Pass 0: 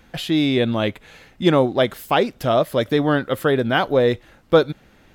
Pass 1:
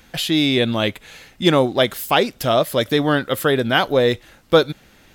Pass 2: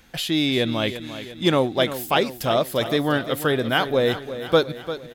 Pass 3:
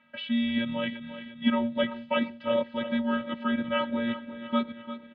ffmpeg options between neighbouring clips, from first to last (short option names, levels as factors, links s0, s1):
-af "highshelf=f=2700:g=10"
-af "aecho=1:1:347|694|1041|1388|1735|2082:0.251|0.136|0.0732|0.0396|0.0214|0.0115,volume=0.631"
-af "afftfilt=real='hypot(re,im)*cos(PI*b)':imag='0':win_size=512:overlap=0.75,highpass=f=160:t=q:w=0.5412,highpass=f=160:t=q:w=1.307,lowpass=f=3200:t=q:w=0.5176,lowpass=f=3200:t=q:w=0.7071,lowpass=f=3200:t=q:w=1.932,afreqshift=-110,volume=0.75"